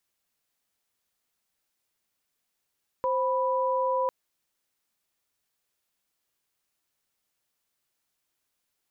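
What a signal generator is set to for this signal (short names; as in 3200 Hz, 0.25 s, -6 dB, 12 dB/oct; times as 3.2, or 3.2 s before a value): chord C5/B5 sine, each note -26 dBFS 1.05 s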